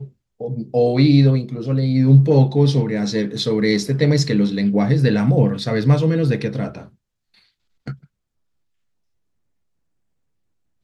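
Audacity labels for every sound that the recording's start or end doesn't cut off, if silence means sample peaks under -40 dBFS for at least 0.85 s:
7.870000	8.040000	sound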